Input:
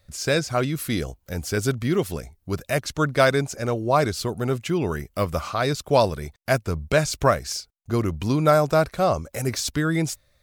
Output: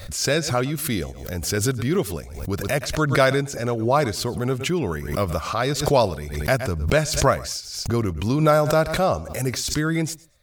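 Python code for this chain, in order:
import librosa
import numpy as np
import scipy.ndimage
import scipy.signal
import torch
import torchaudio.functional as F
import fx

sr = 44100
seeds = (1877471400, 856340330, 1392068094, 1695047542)

y = fx.echo_feedback(x, sr, ms=114, feedback_pct=17, wet_db=-21.5)
y = fx.pre_swell(y, sr, db_per_s=65.0)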